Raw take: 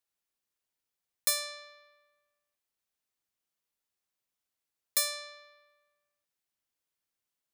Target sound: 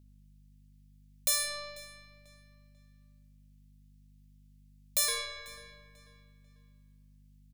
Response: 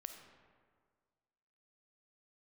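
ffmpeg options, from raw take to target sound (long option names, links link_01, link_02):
-filter_complex "[0:a]acrossover=split=1800[link_01][link_02];[link_01]aeval=exprs='sgn(val(0))*max(abs(val(0))-0.00119,0)':channel_layout=same[link_03];[link_03][link_02]amix=inputs=2:normalize=0,aeval=exprs='val(0)+0.000794*(sin(2*PI*50*n/s)+sin(2*PI*2*50*n/s)/2+sin(2*PI*3*50*n/s)/3+sin(2*PI*4*50*n/s)/4+sin(2*PI*5*50*n/s)/5)':channel_layout=same,asettb=1/sr,asplit=3[link_04][link_05][link_06];[link_04]atrim=end=5.084[link_07];[link_05]atrim=start=5.08:end=5.48,asetpts=PTS-STARTPTS,afade=type=in:duration=0.004:curve=qsin,afade=type=out:start_time=0.396:duration=0.004:curve=qsin,afreqshift=-120[link_08];[link_06]atrim=start=5.476[link_09];[link_07][link_08]acrossfade=duration=0.004:curve1=hsin:curve2=qsin[link_10];[link_10][link_09]acrossfade=duration=0.004:curve1=qsin:curve2=hsin,asplit=2[link_11][link_12];[link_12]aeval=exprs='0.251*sin(PI/2*4.47*val(0)/0.251)':channel_layout=same,volume=-10dB[link_13];[link_11][link_13]amix=inputs=2:normalize=0,asplit=2[link_14][link_15];[link_15]adelay=492,lowpass=frequency=4800:poles=1,volume=-19dB,asplit=2[link_16][link_17];[link_17]adelay=492,lowpass=frequency=4800:poles=1,volume=0.35,asplit=2[link_18][link_19];[link_19]adelay=492,lowpass=frequency=4800:poles=1,volume=0.35[link_20];[link_14][link_16][link_18][link_20]amix=inputs=4:normalize=0[link_21];[1:a]atrim=start_sample=2205[link_22];[link_21][link_22]afir=irnorm=-1:irlink=0"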